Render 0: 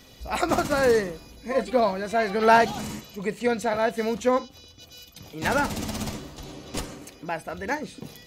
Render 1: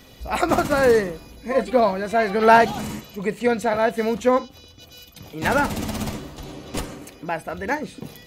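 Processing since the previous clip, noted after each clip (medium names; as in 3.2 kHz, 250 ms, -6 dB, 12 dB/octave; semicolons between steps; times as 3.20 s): peaking EQ 5.6 kHz -4.5 dB 1.3 oct; trim +4 dB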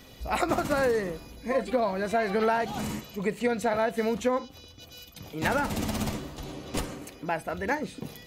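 compression 12:1, threshold -19 dBFS, peak gain reduction 12 dB; trim -2.5 dB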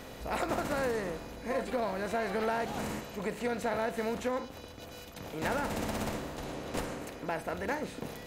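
spectral levelling over time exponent 0.6; hard clipper -14 dBFS, distortion -29 dB; trim -9 dB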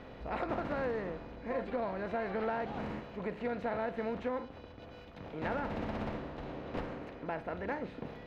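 distance through air 320 m; trim -2 dB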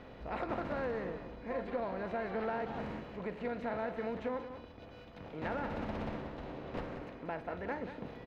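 delay 184 ms -10 dB; trim -2 dB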